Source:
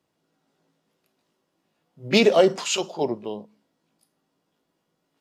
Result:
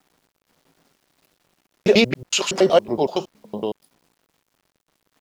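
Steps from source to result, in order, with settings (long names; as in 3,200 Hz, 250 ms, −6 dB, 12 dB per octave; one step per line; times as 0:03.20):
slices reordered back to front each 93 ms, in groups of 5
parametric band 8,100 Hz −4 dB 0.4 octaves
in parallel at +3 dB: downward compressor, threshold −28 dBFS, peak gain reduction 15.5 dB
on the sum: bit reduction 10 bits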